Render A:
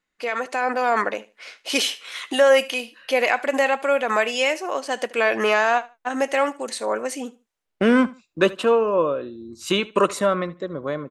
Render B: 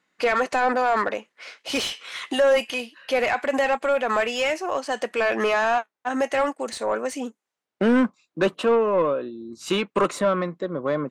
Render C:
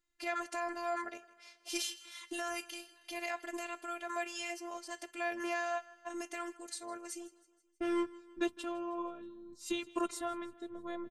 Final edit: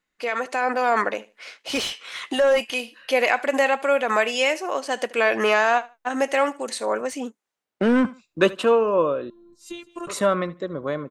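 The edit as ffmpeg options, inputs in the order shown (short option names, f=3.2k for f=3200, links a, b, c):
-filter_complex "[1:a]asplit=2[a][b];[0:a]asplit=4[c][d][e][f];[c]atrim=end=1.572[g];[a]atrim=start=1.568:end=2.722[h];[d]atrim=start=2.718:end=7.012[i];[b]atrim=start=7.008:end=8.052[j];[e]atrim=start=8.048:end=9.302[k];[2:a]atrim=start=9.298:end=10.072[l];[f]atrim=start=10.068[m];[g][h]acrossfade=d=0.004:c1=hsin:c2=hsin[n];[n][i]acrossfade=d=0.004:c1=hsin:c2=hsin[o];[o][j]acrossfade=d=0.004:c1=hsin:c2=hsin[p];[p][k]acrossfade=d=0.004:c1=hsin:c2=hsin[q];[q][l]acrossfade=d=0.004:c1=hsin:c2=hsin[r];[r][m]acrossfade=d=0.004:c1=hsin:c2=hsin"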